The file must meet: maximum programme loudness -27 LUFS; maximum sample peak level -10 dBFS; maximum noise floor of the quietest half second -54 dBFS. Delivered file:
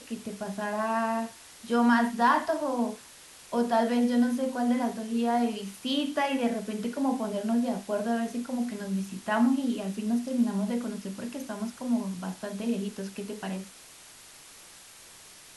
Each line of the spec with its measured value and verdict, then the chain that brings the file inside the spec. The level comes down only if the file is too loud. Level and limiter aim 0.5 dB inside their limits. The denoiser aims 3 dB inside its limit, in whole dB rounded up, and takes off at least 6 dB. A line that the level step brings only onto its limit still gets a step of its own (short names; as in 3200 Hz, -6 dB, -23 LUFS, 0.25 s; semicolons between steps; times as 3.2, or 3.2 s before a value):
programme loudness -29.0 LUFS: OK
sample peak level -11.5 dBFS: OK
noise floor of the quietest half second -51 dBFS: fail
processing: denoiser 6 dB, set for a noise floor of -51 dBFS